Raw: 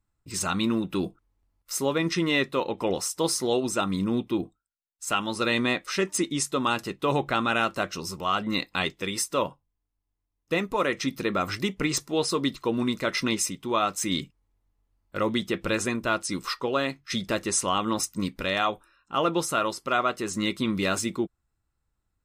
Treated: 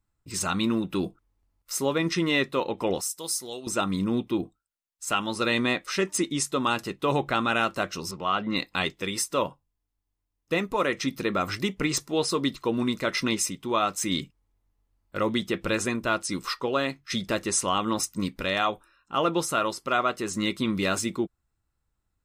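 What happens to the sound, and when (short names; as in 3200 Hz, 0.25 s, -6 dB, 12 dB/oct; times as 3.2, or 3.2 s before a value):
3.01–3.67 pre-emphasis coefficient 0.8
8.11–8.56 BPF 100–3800 Hz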